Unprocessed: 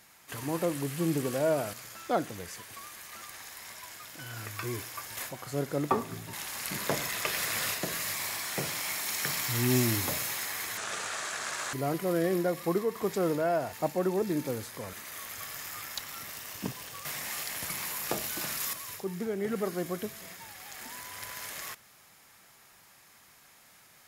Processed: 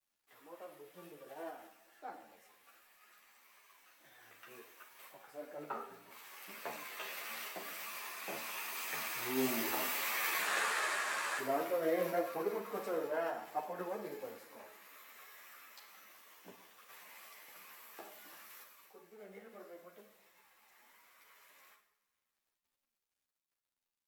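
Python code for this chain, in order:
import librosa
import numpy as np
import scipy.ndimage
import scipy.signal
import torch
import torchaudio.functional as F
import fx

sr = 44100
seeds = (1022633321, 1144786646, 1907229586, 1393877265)

p1 = fx.doppler_pass(x, sr, speed_mps=12, closest_m=5.7, pass_at_s=10.49)
p2 = scipy.signal.sosfilt(scipy.signal.butter(2, 380.0, 'highpass', fs=sr, output='sos'), p1)
p3 = fx.rider(p2, sr, range_db=3, speed_s=0.5)
p4 = p2 + (p3 * librosa.db_to_amplitude(2.5))
p5 = fx.peak_eq(p4, sr, hz=6400.0, db=-9.5, octaves=2.2)
p6 = fx.quant_dither(p5, sr, seeds[0], bits=12, dither='none')
p7 = fx.formant_shift(p6, sr, semitones=2)
p8 = p7 + fx.echo_feedback(p7, sr, ms=202, feedback_pct=59, wet_db=-22.5, dry=0)
p9 = fx.rev_schroeder(p8, sr, rt60_s=0.58, comb_ms=27, drr_db=5.5)
p10 = fx.ensemble(p9, sr)
y = p10 * librosa.db_to_amplitude(1.5)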